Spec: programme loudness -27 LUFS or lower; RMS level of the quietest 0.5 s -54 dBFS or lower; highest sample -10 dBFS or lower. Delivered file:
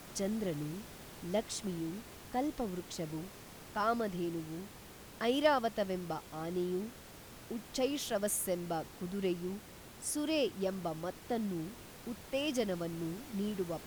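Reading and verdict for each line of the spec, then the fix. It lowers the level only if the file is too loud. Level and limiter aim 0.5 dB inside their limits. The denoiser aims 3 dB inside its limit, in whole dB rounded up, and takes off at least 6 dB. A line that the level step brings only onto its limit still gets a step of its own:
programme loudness -37.0 LUFS: OK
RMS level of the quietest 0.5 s -52 dBFS: fail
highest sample -17.5 dBFS: OK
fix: denoiser 6 dB, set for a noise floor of -52 dBFS

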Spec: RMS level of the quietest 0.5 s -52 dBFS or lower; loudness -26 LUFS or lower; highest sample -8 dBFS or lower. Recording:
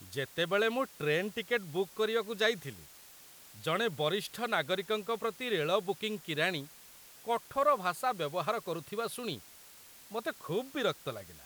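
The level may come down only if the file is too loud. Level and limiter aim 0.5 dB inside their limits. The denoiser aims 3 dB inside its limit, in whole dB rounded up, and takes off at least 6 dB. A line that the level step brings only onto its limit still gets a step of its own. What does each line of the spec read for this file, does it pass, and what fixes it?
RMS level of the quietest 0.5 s -55 dBFS: OK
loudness -33.5 LUFS: OK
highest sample -15.0 dBFS: OK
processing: none

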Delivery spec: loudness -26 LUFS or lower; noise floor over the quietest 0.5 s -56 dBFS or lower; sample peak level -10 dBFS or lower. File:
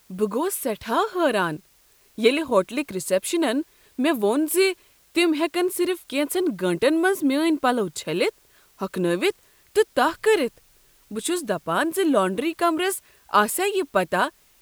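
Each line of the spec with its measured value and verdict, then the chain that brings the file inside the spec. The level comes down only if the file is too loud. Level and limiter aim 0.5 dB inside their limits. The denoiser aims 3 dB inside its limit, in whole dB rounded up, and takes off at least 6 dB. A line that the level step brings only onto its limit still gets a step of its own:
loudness -23.0 LUFS: fail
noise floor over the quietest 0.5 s -58 dBFS: OK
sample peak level -4.5 dBFS: fail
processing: gain -3.5 dB; limiter -10.5 dBFS

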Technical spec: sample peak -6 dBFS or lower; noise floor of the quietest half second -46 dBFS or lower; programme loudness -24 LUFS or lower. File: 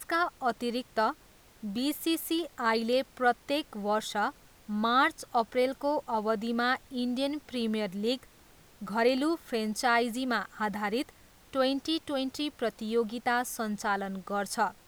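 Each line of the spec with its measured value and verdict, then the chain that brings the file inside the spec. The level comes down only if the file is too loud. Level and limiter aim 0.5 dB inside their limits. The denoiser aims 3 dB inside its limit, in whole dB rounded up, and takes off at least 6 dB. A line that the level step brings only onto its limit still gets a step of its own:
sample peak -13.5 dBFS: OK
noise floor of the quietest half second -57 dBFS: OK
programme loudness -30.5 LUFS: OK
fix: none

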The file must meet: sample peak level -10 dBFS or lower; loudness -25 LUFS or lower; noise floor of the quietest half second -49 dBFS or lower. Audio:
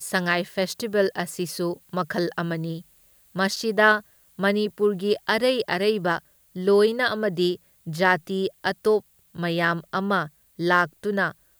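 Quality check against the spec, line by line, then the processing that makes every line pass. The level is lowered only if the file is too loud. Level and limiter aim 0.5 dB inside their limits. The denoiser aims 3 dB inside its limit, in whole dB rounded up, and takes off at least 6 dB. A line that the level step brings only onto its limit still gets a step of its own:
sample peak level -4.5 dBFS: fail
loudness -24.0 LUFS: fail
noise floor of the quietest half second -58 dBFS: OK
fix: gain -1.5 dB; limiter -10.5 dBFS

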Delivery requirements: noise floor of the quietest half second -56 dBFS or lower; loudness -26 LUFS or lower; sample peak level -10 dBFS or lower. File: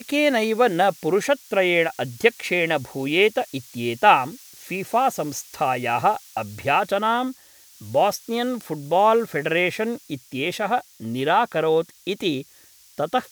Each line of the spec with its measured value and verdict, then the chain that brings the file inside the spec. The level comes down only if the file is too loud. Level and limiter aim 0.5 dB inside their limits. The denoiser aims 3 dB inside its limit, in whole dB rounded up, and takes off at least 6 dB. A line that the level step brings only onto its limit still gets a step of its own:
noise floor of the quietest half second -52 dBFS: fail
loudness -22.0 LUFS: fail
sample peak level -1.5 dBFS: fail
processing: gain -4.5 dB; limiter -10.5 dBFS

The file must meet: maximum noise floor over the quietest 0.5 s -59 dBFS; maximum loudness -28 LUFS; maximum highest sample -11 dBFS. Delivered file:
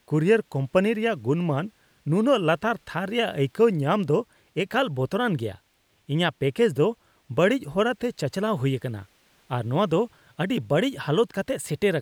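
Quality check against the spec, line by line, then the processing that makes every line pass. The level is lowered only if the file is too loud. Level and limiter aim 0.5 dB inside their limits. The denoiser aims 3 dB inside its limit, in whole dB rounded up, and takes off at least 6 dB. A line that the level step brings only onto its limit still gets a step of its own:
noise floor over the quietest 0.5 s -65 dBFS: OK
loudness -25.0 LUFS: fail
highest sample -8.0 dBFS: fail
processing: gain -3.5 dB

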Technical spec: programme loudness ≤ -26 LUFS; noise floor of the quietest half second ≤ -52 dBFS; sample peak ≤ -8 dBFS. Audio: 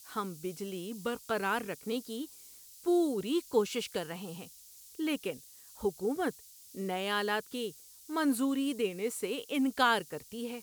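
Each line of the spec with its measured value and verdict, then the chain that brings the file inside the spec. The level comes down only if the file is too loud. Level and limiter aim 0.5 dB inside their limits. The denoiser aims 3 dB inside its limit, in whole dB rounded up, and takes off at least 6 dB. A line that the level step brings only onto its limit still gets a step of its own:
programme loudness -33.5 LUFS: OK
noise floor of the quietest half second -54 dBFS: OK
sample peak -13.5 dBFS: OK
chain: none

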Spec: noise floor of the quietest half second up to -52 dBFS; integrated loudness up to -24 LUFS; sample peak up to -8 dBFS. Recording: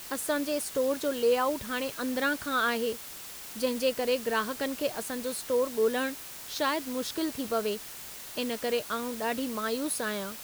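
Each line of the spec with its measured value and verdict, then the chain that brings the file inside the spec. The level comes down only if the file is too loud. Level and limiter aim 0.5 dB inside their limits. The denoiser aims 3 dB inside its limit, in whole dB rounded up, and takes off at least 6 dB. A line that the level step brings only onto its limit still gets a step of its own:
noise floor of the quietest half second -43 dBFS: fail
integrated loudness -30.5 LUFS: OK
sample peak -15.0 dBFS: OK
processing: denoiser 12 dB, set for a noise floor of -43 dBFS

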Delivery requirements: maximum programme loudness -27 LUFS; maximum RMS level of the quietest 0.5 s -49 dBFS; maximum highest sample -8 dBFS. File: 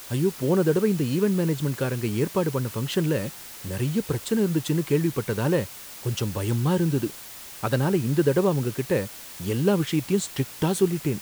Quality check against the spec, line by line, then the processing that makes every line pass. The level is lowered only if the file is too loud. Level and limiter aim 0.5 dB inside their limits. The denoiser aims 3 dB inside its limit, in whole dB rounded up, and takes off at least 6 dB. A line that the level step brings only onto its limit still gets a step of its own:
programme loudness -25.0 LUFS: fail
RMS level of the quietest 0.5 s -41 dBFS: fail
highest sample -9.0 dBFS: OK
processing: denoiser 9 dB, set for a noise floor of -41 dBFS; gain -2.5 dB

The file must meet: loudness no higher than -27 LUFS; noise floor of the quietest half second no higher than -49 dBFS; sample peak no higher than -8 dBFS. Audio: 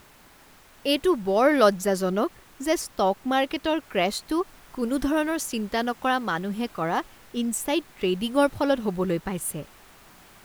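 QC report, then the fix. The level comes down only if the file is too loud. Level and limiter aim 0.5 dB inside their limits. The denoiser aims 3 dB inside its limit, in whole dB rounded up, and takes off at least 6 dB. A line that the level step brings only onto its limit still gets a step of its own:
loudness -25.5 LUFS: fail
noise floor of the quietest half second -53 dBFS: OK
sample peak -5.5 dBFS: fail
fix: gain -2 dB; limiter -8.5 dBFS

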